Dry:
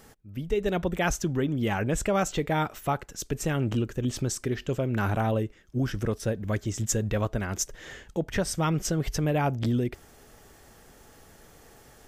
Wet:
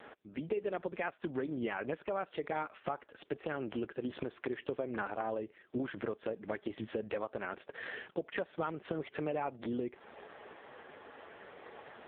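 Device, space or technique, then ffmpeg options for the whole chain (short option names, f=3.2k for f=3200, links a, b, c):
voicemail: -af "highpass=380,lowpass=3k,acompressor=threshold=-43dB:ratio=6,volume=9.5dB" -ar 8000 -c:a libopencore_amrnb -b:a 4750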